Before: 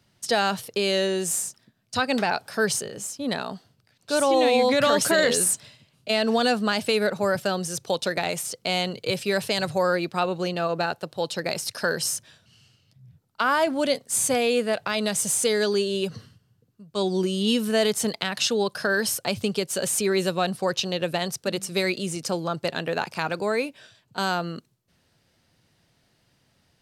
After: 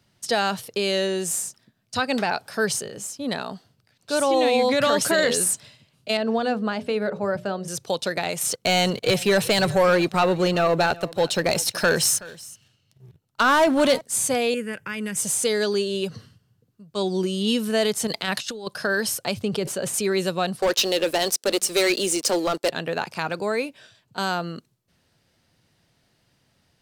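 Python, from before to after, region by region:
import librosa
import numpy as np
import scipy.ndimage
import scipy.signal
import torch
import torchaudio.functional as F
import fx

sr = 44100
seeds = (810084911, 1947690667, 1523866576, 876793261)

y = fx.chain(x, sr, fx.lowpass(hz=1200.0, slope=6),
    fx.hum_notches(base_hz=60, count=10), at=(6.17, 7.68))
y = fx.chain(y, sr, fx.leveller(passes=2),
    fx.notch(hz=4800.0, q=12.0),
    fx.echo_single(ms=375, db=-20.0), at=(8.41, 14.01))
y = fx.chain(y, sr, fx.peak_eq(hz=1200.0, db=-7.5, octaves=0.3),
    fx.fixed_phaser(hz=1700.0, stages=4), at=(14.54, 15.17))
y = fx.chain(y, sr, fx.high_shelf(hz=4800.0, db=4.0),
    fx.over_compress(threshold_db=-28.0, ratio=-0.5), at=(18.07, 18.67))
y = fx.chain(y, sr, fx.high_shelf(hz=2500.0, db=-9.5),
    fx.sustainer(db_per_s=66.0), at=(19.39, 19.94))
y = fx.chain(y, sr, fx.highpass(hz=300.0, slope=24),
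    fx.leveller(passes=3),
    fx.peak_eq(hz=1200.0, db=-5.0, octaves=2.8), at=(20.62, 22.7))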